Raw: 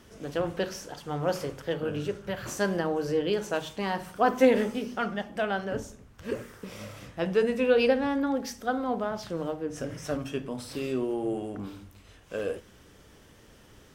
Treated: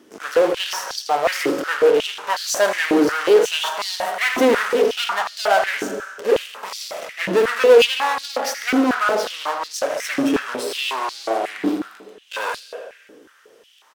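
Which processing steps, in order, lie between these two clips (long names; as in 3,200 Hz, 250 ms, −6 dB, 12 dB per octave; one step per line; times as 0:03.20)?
dynamic equaliser 1,500 Hz, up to +5 dB, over −44 dBFS, Q 0.96
in parallel at −7 dB: fuzz pedal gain 36 dB, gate −44 dBFS
on the sum: single-tap delay 80 ms −13 dB
on a send at −11 dB: convolution reverb RT60 1.3 s, pre-delay 95 ms
on the sum: asymmetric clip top −25 dBFS
high-pass on a step sequencer 5.5 Hz 300–4,400 Hz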